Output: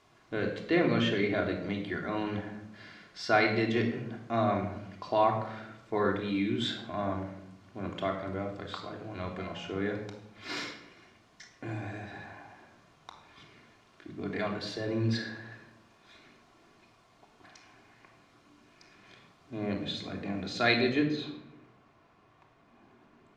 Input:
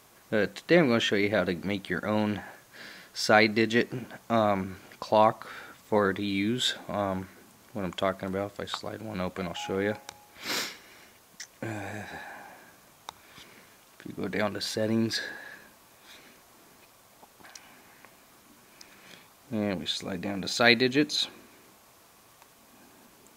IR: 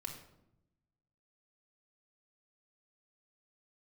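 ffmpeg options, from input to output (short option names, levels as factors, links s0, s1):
-filter_complex "[0:a]asetnsamples=n=441:p=0,asendcmd='20.99 lowpass f 2400',lowpass=4600[s0];[1:a]atrim=start_sample=2205[s1];[s0][s1]afir=irnorm=-1:irlink=0,volume=0.794"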